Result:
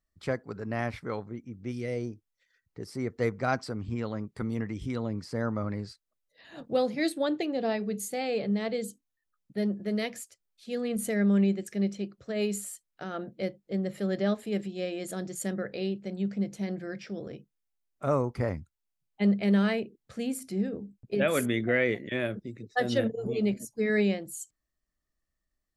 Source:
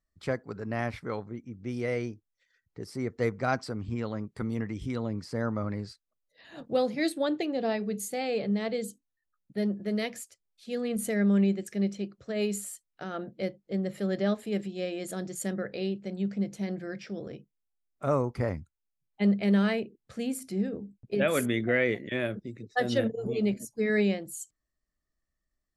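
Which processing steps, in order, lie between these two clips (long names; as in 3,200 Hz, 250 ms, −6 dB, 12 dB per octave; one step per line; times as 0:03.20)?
0:01.71–0:02.11: parametric band 570 Hz → 2,800 Hz −12.5 dB 1.5 octaves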